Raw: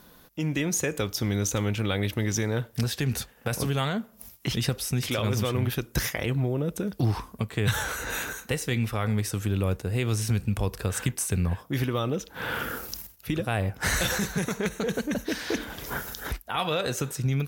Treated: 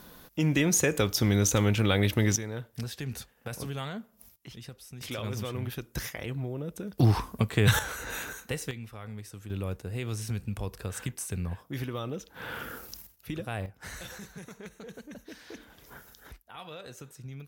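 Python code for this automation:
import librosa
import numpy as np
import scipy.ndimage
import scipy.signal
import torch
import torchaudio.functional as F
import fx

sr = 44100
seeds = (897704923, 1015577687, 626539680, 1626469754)

y = fx.gain(x, sr, db=fx.steps((0.0, 2.5), (2.36, -9.0), (4.36, -18.0), (5.01, -8.0), (6.98, 3.0), (7.79, -5.0), (8.71, -15.0), (9.5, -7.5), (13.66, -16.5)))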